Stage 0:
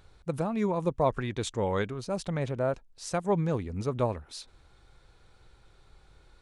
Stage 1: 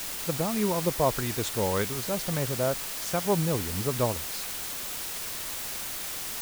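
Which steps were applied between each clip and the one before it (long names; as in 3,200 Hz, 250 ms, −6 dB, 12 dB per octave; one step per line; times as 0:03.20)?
bit-depth reduction 6 bits, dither triangular
level +1 dB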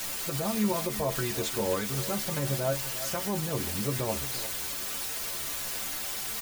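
brickwall limiter −20.5 dBFS, peak gain reduction 8 dB
stiff-string resonator 67 Hz, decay 0.23 s, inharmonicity 0.008
single-tap delay 350 ms −14 dB
level +7 dB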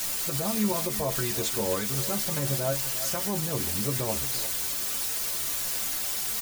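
bass and treble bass +1 dB, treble +5 dB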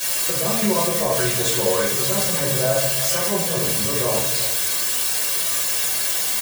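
high-pass filter 280 Hz 6 dB per octave
comb filter 1.8 ms, depth 44%
rectangular room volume 91 cubic metres, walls mixed, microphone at 2.3 metres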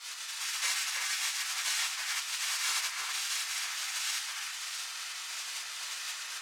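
gate on every frequency bin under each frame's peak −20 dB weak
flat-topped band-pass 3,200 Hz, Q 0.52
delay that swaps between a low-pass and a high-pass 324 ms, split 2,400 Hz, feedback 53%, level −2 dB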